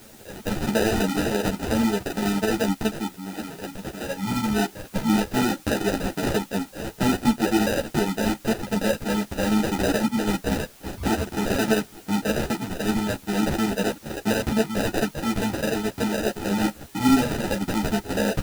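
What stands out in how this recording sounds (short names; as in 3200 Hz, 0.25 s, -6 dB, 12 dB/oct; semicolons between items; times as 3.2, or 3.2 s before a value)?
aliases and images of a low sample rate 1100 Hz, jitter 0%; chopped level 12 Hz, duty 90%; a quantiser's noise floor 8-bit, dither triangular; a shimmering, thickened sound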